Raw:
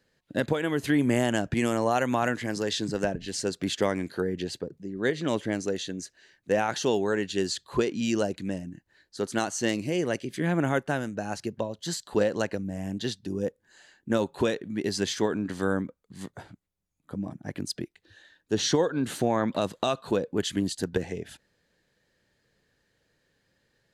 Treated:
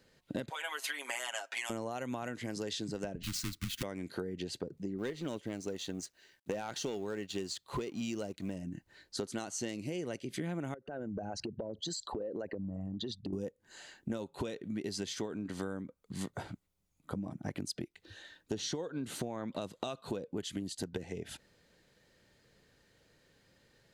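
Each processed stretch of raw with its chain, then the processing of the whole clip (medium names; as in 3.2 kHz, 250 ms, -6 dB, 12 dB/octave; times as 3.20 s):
0.50–1.70 s: high-pass 750 Hz 24 dB/octave + comb 7.4 ms, depth 91%
3.23–3.83 s: square wave that keeps the level + Butterworth band-stop 700 Hz, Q 0.63 + frequency shift -83 Hz
4.98–8.56 s: companding laws mixed up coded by A + hard clipper -18 dBFS
10.74–13.33 s: resonances exaggerated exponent 2 + compression 5:1, threshold -38 dBFS
whole clip: band-stop 1.7 kHz, Q 11; dynamic bell 1.1 kHz, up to -3 dB, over -39 dBFS, Q 0.89; compression 12:1, threshold -39 dBFS; trim +4.5 dB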